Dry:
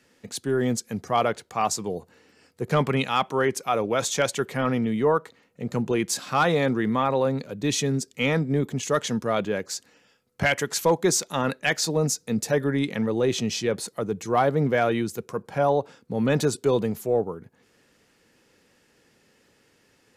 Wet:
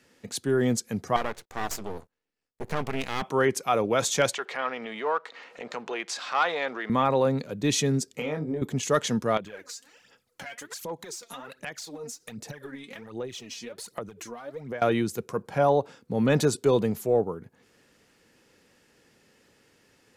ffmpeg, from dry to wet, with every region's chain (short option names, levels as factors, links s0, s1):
-filter_complex "[0:a]asettb=1/sr,asplit=3[s0][s1][s2];[s0]atrim=end=1.164[s3];[s1]atrim=start=1.16:end=3.22,asetpts=PTS-STARTPTS,afade=t=in:d=0.004:c=qsin,afade=t=out:st=2.056:d=0.004:c=qsin,agate=range=0.0501:threshold=0.00224:ratio=16:release=100:detection=peak,acompressor=threshold=0.0447:ratio=1.5:attack=3.2:release=140:knee=1:detection=peak,aeval=exprs='max(val(0),0)':c=same[s4];[s2]atrim=start=3.216[s5];[s3][s4]acrossfade=d=0.004:c1=hsin:c2=qsin[s6];[s6][s5]acrossfade=d=0.004:c1=qsin:c2=hsin,asettb=1/sr,asplit=3[s7][s8][s9];[s7]atrim=end=4.344[s10];[s8]atrim=start=4.34:end=6.9,asetpts=PTS-STARTPTS,afade=t=in:d=0.004:c=qsin,afade=t=out:st=2.556:d=0.004:c=qsin,aeval=exprs='if(lt(val(0),0),0.708*val(0),val(0))':c=same,highpass=680,lowpass=4500,acompressor=mode=upward:threshold=0.0398:ratio=2.5:attack=3.2:release=140:knee=2.83:detection=peak[s11];[s9]atrim=start=6.896[s12];[s10][s11]acrossfade=d=0.004:c1=hsin:c2=qsin[s13];[s13][s12]acrossfade=d=0.004:c1=qsin:c2=hsin,asettb=1/sr,asplit=3[s14][s15][s16];[s14]atrim=end=8.164[s17];[s15]atrim=start=8.16:end=8.62,asetpts=PTS-STARTPTS,afade=t=in:d=0.004:c=qsin,afade=t=out:st=0.456:d=0.004:c=qsin,equalizer=f=520:t=o:w=2.3:g=9,acompressor=threshold=0.0398:ratio=8:attack=3.2:release=140:knee=1:detection=peak,asplit=2[s18][s19];[s19]adelay=26,volume=0.562[s20];[s18][s20]amix=inputs=2:normalize=0,atrim=end_sample=20286[s21];[s16]atrim=start=8.616[s22];[s17][s21]acrossfade=d=0.004:c1=hsin:c2=qsin[s23];[s23][s22]acrossfade=d=0.004:c1=qsin:c2=hsin,asettb=1/sr,asplit=3[s24][s25][s26];[s24]atrim=end=9.374[s27];[s25]atrim=start=9.37:end=14.82,asetpts=PTS-STARTPTS,afade=t=in:d=0.004:c=qsin,afade=t=out:st=5.446:d=0.004:c=qsin,lowshelf=f=470:g=-8,acompressor=threshold=0.0126:ratio=16:attack=3.2:release=140:knee=1:detection=peak,aphaser=in_gain=1:out_gain=1:delay=4.4:decay=0.68:speed=1.3:type=sinusoidal[s28];[s26]atrim=start=14.816[s29];[s27][s28]acrossfade=d=0.004:c1=hsin:c2=qsin[s30];[s30][s29]acrossfade=d=0.004:c1=qsin:c2=hsin"